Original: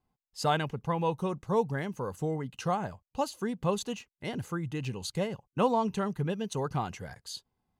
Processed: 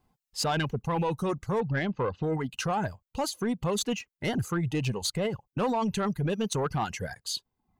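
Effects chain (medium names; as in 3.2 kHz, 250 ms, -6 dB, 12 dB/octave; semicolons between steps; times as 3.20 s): reverb removal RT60 0.77 s; 1.60–2.23 s: steep low-pass 4 kHz 36 dB/octave; in parallel at +2 dB: compressor with a negative ratio -33 dBFS, ratio -0.5; on the sum: saturation -20.5 dBFS, distortion -17 dB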